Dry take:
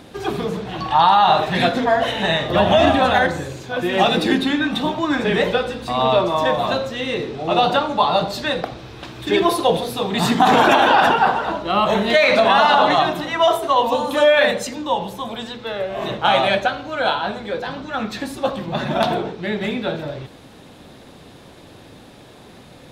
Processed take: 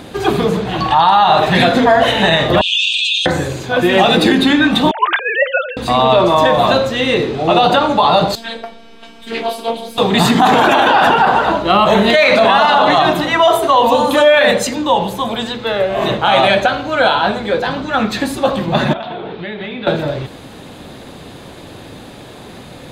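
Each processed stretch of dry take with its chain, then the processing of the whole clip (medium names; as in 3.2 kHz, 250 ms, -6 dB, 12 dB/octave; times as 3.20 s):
2.61–3.26 s: brick-wall FIR band-pass 2.4–8.9 kHz + level flattener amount 70%
4.91–5.77 s: formants replaced by sine waves + Chebyshev high-pass 1 kHz
8.35–9.98 s: robot voice 229 Hz + feedback comb 99 Hz, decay 0.3 s, mix 90% + loudspeaker Doppler distortion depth 0.41 ms
18.93–19.87 s: Chebyshev low-pass 3.6 kHz, order 3 + bass shelf 500 Hz -6 dB + compression 16:1, threshold -30 dBFS
whole clip: band-stop 5.5 kHz, Q 11; loudness maximiser +10 dB; trim -1 dB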